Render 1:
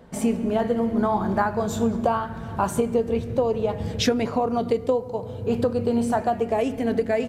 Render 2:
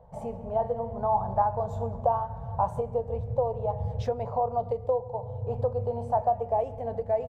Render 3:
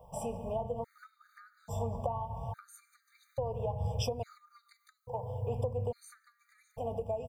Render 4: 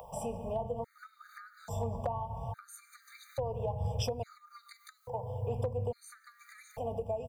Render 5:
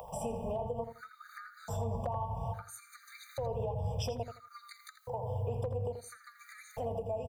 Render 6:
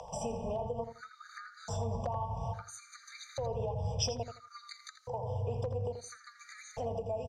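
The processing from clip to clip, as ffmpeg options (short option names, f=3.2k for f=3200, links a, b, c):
-af "firequalizer=gain_entry='entry(130,0);entry(190,-15);entry(310,-28);entry(490,-4);entry(850,1);entry(1400,-19);entry(2500,-23);entry(11000,-27)':delay=0.05:min_phase=1"
-filter_complex "[0:a]acrossover=split=330[a][b];[b]acompressor=threshold=-34dB:ratio=10[c];[a][c]amix=inputs=2:normalize=0,crystalizer=i=9:c=0,afftfilt=real='re*gt(sin(2*PI*0.59*pts/sr)*(1-2*mod(floor(b*sr/1024/1200),2)),0)':imag='im*gt(sin(2*PI*0.59*pts/sr)*(1-2*mod(floor(b*sr/1024/1200),2)),0)':win_size=1024:overlap=0.75,volume=-2.5dB"
-filter_complex "[0:a]acrossover=split=420[a][b];[b]acompressor=mode=upward:threshold=-42dB:ratio=2.5[c];[a][c]amix=inputs=2:normalize=0,asoftclip=type=hard:threshold=-24dB"
-filter_complex "[0:a]alimiter=level_in=5.5dB:limit=-24dB:level=0:latency=1:release=109,volume=-5.5dB,asplit=2[a][b];[b]adelay=83,lowpass=f=3.5k:p=1,volume=-8.5dB,asplit=2[c][d];[d]adelay=83,lowpass=f=3.5k:p=1,volume=0.2,asplit=2[e][f];[f]adelay=83,lowpass=f=3.5k:p=1,volume=0.2[g];[a][c][e][g]amix=inputs=4:normalize=0,volume=2dB"
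-af "lowpass=f=5.8k:t=q:w=3.6"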